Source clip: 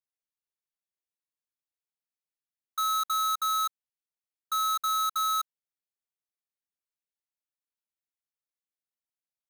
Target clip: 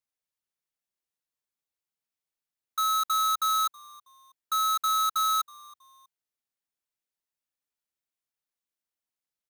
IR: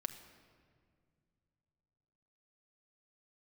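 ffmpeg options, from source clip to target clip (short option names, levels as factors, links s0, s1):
-filter_complex "[0:a]asplit=3[s0][s1][s2];[s1]adelay=322,afreqshift=-110,volume=0.0631[s3];[s2]adelay=644,afreqshift=-220,volume=0.0245[s4];[s0][s3][s4]amix=inputs=3:normalize=0,acrusher=bits=6:mode=log:mix=0:aa=0.000001,volume=1.26"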